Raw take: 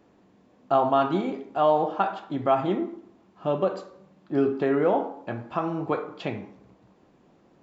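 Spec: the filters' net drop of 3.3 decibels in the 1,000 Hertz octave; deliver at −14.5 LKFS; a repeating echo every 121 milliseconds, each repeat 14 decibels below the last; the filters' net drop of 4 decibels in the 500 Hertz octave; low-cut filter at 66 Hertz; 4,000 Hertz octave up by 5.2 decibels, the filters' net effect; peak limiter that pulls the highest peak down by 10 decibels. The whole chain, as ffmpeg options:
ffmpeg -i in.wav -af "highpass=66,equalizer=frequency=500:width_type=o:gain=-4.5,equalizer=frequency=1000:width_type=o:gain=-3,equalizer=frequency=4000:width_type=o:gain=7.5,alimiter=limit=-22.5dB:level=0:latency=1,aecho=1:1:121|242:0.2|0.0399,volume=18.5dB" out.wav

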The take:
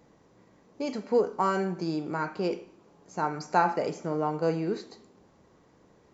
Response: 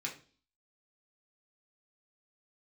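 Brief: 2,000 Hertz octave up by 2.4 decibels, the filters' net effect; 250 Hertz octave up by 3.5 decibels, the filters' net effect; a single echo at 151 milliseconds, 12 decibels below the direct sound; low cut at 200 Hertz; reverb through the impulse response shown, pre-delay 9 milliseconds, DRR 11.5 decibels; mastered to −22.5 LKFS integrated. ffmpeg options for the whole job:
-filter_complex "[0:a]highpass=200,equalizer=frequency=250:width_type=o:gain=7,equalizer=frequency=2000:width_type=o:gain=3.5,aecho=1:1:151:0.251,asplit=2[link_01][link_02];[1:a]atrim=start_sample=2205,adelay=9[link_03];[link_02][link_03]afir=irnorm=-1:irlink=0,volume=-13dB[link_04];[link_01][link_04]amix=inputs=2:normalize=0,volume=4.5dB"

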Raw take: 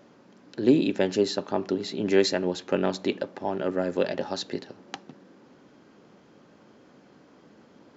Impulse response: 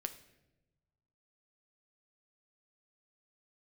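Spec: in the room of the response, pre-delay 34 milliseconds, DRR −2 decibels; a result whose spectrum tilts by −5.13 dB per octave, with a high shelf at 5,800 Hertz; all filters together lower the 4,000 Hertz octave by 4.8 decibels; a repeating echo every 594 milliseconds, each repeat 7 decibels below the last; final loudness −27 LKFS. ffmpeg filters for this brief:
-filter_complex "[0:a]equalizer=frequency=4000:width_type=o:gain=-3.5,highshelf=frequency=5800:gain=-5.5,aecho=1:1:594|1188|1782|2376|2970:0.447|0.201|0.0905|0.0407|0.0183,asplit=2[link_01][link_02];[1:a]atrim=start_sample=2205,adelay=34[link_03];[link_02][link_03]afir=irnorm=-1:irlink=0,volume=3.5dB[link_04];[link_01][link_04]amix=inputs=2:normalize=0,volume=-4.5dB"

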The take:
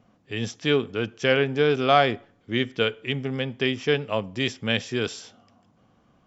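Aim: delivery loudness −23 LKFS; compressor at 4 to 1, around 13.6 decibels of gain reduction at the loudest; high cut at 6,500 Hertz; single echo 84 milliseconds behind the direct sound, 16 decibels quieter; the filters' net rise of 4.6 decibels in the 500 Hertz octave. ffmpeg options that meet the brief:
ffmpeg -i in.wav -af "lowpass=6500,equalizer=frequency=500:width_type=o:gain=5.5,acompressor=threshold=-29dB:ratio=4,aecho=1:1:84:0.158,volume=9.5dB" out.wav

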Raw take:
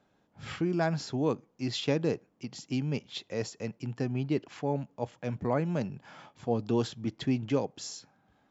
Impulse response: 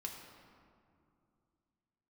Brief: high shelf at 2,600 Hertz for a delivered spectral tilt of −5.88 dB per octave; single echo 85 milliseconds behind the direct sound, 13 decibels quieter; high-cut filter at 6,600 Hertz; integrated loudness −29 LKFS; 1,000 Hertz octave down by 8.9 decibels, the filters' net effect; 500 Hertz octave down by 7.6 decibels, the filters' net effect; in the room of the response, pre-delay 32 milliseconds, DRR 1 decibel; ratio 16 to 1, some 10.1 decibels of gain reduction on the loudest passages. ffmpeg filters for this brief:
-filter_complex "[0:a]lowpass=6600,equalizer=frequency=500:width_type=o:gain=-7.5,equalizer=frequency=1000:width_type=o:gain=-8.5,highshelf=frequency=2600:gain=-3,acompressor=threshold=-35dB:ratio=16,aecho=1:1:85:0.224,asplit=2[link_01][link_02];[1:a]atrim=start_sample=2205,adelay=32[link_03];[link_02][link_03]afir=irnorm=-1:irlink=0,volume=0.5dB[link_04];[link_01][link_04]amix=inputs=2:normalize=0,volume=10.5dB"

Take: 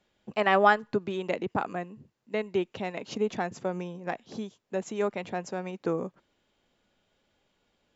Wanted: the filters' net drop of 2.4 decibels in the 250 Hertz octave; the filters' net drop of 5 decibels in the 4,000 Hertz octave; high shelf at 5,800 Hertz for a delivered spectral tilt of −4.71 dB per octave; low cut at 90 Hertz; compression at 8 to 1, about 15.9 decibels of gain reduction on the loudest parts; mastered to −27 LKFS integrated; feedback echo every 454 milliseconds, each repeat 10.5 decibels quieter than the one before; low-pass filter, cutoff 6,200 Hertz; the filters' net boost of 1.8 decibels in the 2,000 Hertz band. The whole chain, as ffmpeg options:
ffmpeg -i in.wav -af "highpass=90,lowpass=6200,equalizer=frequency=250:width_type=o:gain=-3.5,equalizer=frequency=2000:width_type=o:gain=4.5,equalizer=frequency=4000:width_type=o:gain=-8.5,highshelf=frequency=5800:gain=-4,acompressor=threshold=-31dB:ratio=8,aecho=1:1:454|908|1362:0.299|0.0896|0.0269,volume=11dB" out.wav

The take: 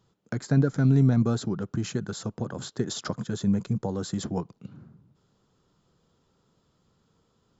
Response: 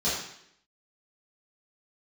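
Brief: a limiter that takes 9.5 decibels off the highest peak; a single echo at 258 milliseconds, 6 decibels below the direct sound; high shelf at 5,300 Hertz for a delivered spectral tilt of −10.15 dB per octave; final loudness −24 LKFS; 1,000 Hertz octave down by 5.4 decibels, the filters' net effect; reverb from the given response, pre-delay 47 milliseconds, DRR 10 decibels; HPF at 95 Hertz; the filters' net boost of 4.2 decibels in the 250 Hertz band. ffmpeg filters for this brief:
-filter_complex "[0:a]highpass=95,equalizer=frequency=250:width_type=o:gain=5.5,equalizer=frequency=1000:width_type=o:gain=-8,highshelf=frequency=5300:gain=-3.5,alimiter=limit=-18dB:level=0:latency=1,aecho=1:1:258:0.501,asplit=2[link_01][link_02];[1:a]atrim=start_sample=2205,adelay=47[link_03];[link_02][link_03]afir=irnorm=-1:irlink=0,volume=-21dB[link_04];[link_01][link_04]amix=inputs=2:normalize=0,volume=4dB"

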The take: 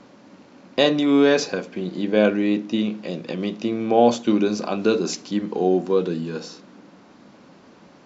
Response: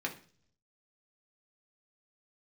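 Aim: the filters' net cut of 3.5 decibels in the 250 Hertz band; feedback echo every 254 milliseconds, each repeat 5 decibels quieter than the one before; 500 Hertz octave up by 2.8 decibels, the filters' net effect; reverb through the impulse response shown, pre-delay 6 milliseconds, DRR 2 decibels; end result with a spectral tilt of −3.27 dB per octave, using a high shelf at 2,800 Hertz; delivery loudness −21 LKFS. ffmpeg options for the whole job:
-filter_complex "[0:a]equalizer=frequency=250:width_type=o:gain=-6.5,equalizer=frequency=500:width_type=o:gain=5,highshelf=frequency=2800:gain=5,aecho=1:1:254|508|762|1016|1270|1524|1778:0.562|0.315|0.176|0.0988|0.0553|0.031|0.0173,asplit=2[link_01][link_02];[1:a]atrim=start_sample=2205,adelay=6[link_03];[link_02][link_03]afir=irnorm=-1:irlink=0,volume=-5.5dB[link_04];[link_01][link_04]amix=inputs=2:normalize=0,volume=-3.5dB"

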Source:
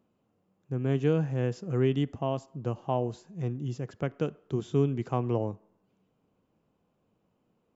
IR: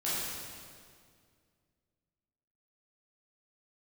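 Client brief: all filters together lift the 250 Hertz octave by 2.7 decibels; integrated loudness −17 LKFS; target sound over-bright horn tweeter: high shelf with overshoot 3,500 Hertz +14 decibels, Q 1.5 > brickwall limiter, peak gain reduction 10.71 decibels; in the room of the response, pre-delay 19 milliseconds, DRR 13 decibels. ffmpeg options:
-filter_complex "[0:a]equalizer=frequency=250:width_type=o:gain=3.5,asplit=2[link_01][link_02];[1:a]atrim=start_sample=2205,adelay=19[link_03];[link_02][link_03]afir=irnorm=-1:irlink=0,volume=-20dB[link_04];[link_01][link_04]amix=inputs=2:normalize=0,highshelf=frequency=3500:width_type=q:width=1.5:gain=14,volume=17dB,alimiter=limit=-6.5dB:level=0:latency=1"

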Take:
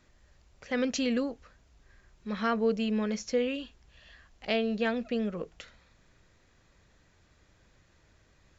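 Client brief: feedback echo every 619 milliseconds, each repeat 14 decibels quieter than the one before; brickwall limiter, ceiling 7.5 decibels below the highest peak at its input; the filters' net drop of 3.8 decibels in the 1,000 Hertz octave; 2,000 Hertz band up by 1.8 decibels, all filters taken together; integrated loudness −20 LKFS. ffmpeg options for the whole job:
ffmpeg -i in.wav -af "equalizer=frequency=1000:width_type=o:gain=-7.5,equalizer=frequency=2000:width_type=o:gain=4.5,alimiter=limit=-24dB:level=0:latency=1,aecho=1:1:619|1238:0.2|0.0399,volume=15dB" out.wav

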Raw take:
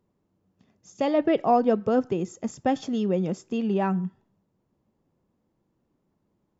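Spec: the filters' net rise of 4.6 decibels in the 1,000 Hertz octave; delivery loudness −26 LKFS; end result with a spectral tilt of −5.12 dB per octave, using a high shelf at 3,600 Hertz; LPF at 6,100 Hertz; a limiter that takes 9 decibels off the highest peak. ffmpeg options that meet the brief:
ffmpeg -i in.wav -af "lowpass=6100,equalizer=frequency=1000:width_type=o:gain=7.5,highshelf=frequency=3600:gain=-4.5,alimiter=limit=-15dB:level=0:latency=1" out.wav

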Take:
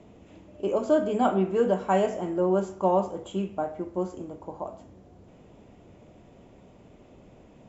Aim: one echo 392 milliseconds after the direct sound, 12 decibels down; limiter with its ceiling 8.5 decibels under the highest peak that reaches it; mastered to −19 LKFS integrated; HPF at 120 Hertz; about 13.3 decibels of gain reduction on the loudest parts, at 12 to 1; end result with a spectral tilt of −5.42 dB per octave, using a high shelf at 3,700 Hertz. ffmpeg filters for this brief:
ffmpeg -i in.wav -af "highpass=120,highshelf=frequency=3700:gain=-3,acompressor=threshold=-31dB:ratio=12,alimiter=level_in=5.5dB:limit=-24dB:level=0:latency=1,volume=-5.5dB,aecho=1:1:392:0.251,volume=20.5dB" out.wav

